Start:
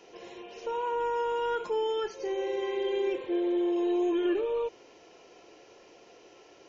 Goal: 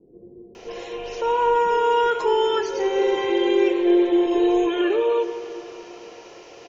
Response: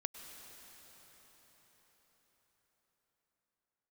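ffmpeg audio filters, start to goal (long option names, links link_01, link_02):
-filter_complex "[0:a]acrossover=split=330[link_01][link_02];[link_02]adelay=550[link_03];[link_01][link_03]amix=inputs=2:normalize=0,asplit=2[link_04][link_05];[1:a]atrim=start_sample=2205,asetrate=66150,aresample=44100[link_06];[link_05][link_06]afir=irnorm=-1:irlink=0,volume=5.5dB[link_07];[link_04][link_07]amix=inputs=2:normalize=0,volume=5.5dB"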